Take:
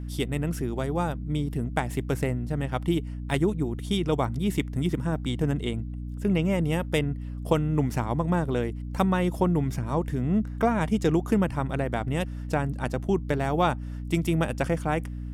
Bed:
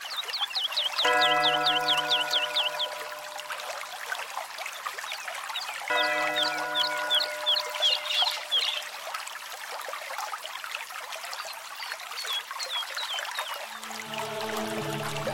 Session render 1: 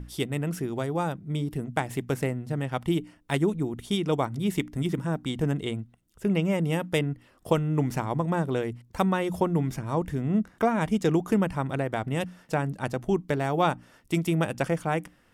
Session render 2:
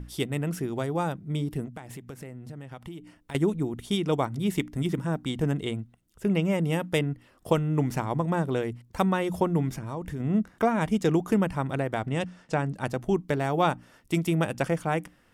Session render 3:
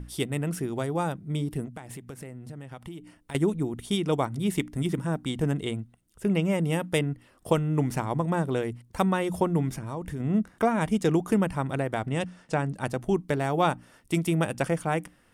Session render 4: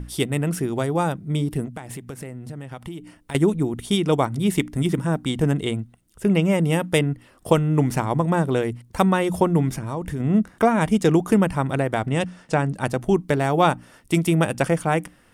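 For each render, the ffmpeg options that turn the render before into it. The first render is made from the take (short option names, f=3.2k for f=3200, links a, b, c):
-af "bandreject=f=60:t=h:w=6,bandreject=f=120:t=h:w=6,bandreject=f=180:t=h:w=6,bandreject=f=240:t=h:w=6,bandreject=f=300:t=h:w=6"
-filter_complex "[0:a]asettb=1/sr,asplit=3[a][b][c];[a]atrim=end=1.674[d];[b]atrim=start=1.67:end=3.35,asetpts=PTS-STARTPTS,afade=t=in:d=0.004:c=qsin,afade=t=out:st=1.676:d=0.004:c=qsin,acompressor=threshold=-38dB:ratio=5:attack=3.2:release=140:knee=1:detection=peak[e];[c]atrim=start=3.346[f];[d][e]acrossfade=d=0.004:c1=hsin:c2=qsin[g];[g][f]acrossfade=d=0.004:c1=qsin:c2=hsin,asettb=1/sr,asplit=3[h][i][j];[h]atrim=end=9.694[k];[i]atrim=start=9.69:end=10.2,asetpts=PTS-STARTPTS,afade=t=in:d=0.004:c=qsin,afade=t=out:st=0.506:d=0.004:c=qsin,acompressor=threshold=-30dB:ratio=4:attack=3.2:release=140:knee=1:detection=peak[l];[j]atrim=start=10.196[m];[k][l]acrossfade=d=0.004:c1=hsin:c2=qsin[n];[n][m]acrossfade=d=0.004:c1=qsin:c2=hsin,asettb=1/sr,asplit=3[o][p][q];[o]atrim=end=12.074[r];[p]atrim=start=12.07:end=12.75,asetpts=PTS-STARTPTS,afade=t=in:d=0.004:c=qsin,afade=t=out:st=0.676:d=0.004:c=qsin,lowpass=f=8.6k:w=0.5412,lowpass=f=8.6k:w=1.3066[s];[q]atrim=start=12.746[t];[r][s]acrossfade=d=0.004:c1=hsin:c2=qsin[u];[u][t]acrossfade=d=0.004:c1=qsin:c2=hsin"
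-af "equalizer=f=9.2k:t=o:w=0.24:g=7.5"
-af "volume=6dB"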